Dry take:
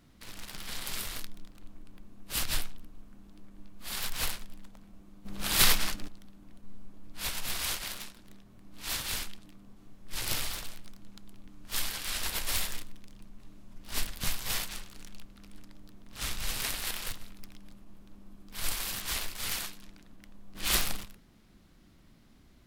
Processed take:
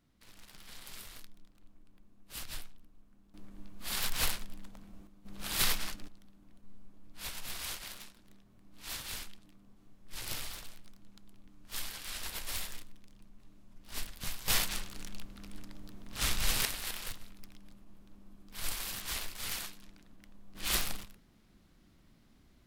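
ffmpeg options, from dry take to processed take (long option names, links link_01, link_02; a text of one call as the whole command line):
ffmpeg -i in.wav -af "asetnsamples=nb_out_samples=441:pad=0,asendcmd='3.34 volume volume 1dB;5.07 volume volume -7dB;14.48 volume volume 3.5dB;16.65 volume volume -4dB',volume=-11.5dB" out.wav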